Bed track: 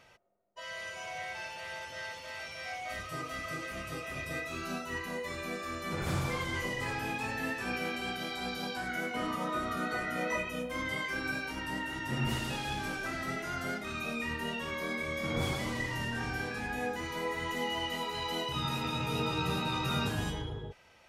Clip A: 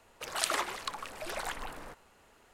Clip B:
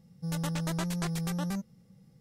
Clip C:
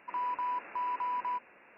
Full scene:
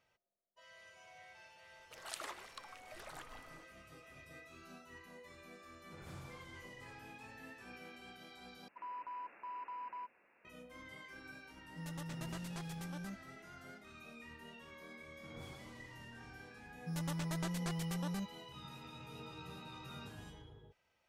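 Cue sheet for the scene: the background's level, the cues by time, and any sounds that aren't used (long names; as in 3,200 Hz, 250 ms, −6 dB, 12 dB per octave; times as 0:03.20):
bed track −18 dB
0:01.70: mix in A −14.5 dB
0:08.68: overwrite with C −12 dB
0:11.54: mix in B −13 dB
0:16.64: mix in B −7 dB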